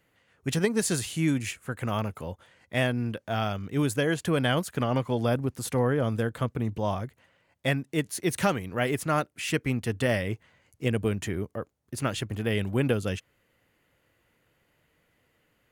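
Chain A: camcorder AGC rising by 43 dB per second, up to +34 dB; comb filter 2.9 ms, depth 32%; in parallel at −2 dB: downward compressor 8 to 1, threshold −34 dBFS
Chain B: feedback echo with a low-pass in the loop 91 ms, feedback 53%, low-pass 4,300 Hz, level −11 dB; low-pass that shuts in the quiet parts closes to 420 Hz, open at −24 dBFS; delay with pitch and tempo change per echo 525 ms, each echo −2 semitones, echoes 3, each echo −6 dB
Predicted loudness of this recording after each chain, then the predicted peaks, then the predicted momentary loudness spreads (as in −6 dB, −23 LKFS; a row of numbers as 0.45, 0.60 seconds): −26.0, −28.0 LKFS; −4.5, −10.5 dBFS; 8, 10 LU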